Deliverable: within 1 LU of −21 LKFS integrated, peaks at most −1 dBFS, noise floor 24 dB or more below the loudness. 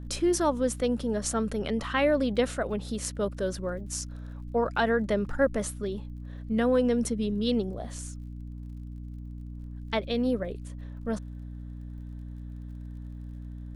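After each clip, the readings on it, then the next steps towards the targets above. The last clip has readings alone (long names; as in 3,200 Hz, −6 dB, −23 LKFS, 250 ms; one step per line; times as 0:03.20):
crackle rate 43 per second; mains hum 60 Hz; hum harmonics up to 300 Hz; level of the hum −37 dBFS; integrated loudness −29.0 LKFS; sample peak −13.0 dBFS; target loudness −21.0 LKFS
→ click removal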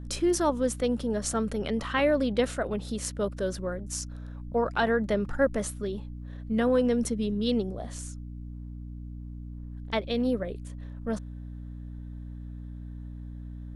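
crackle rate 0.15 per second; mains hum 60 Hz; hum harmonics up to 300 Hz; level of the hum −37 dBFS
→ mains-hum notches 60/120/180/240/300 Hz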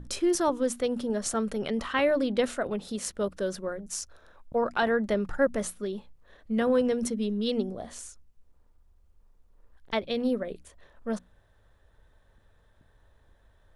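mains hum none found; integrated loudness −29.0 LKFS; sample peak −13.0 dBFS; target loudness −21.0 LKFS
→ level +8 dB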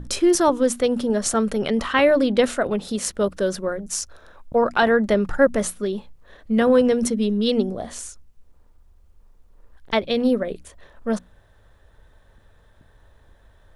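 integrated loudness −21.0 LKFS; sample peak −5.0 dBFS; background noise floor −55 dBFS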